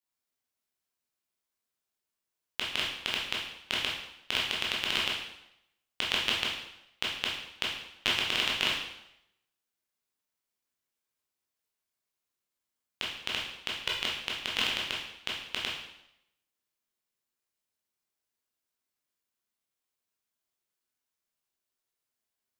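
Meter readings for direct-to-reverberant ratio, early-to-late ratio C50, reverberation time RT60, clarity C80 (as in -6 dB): -4.5 dB, 3.0 dB, 0.80 s, 6.0 dB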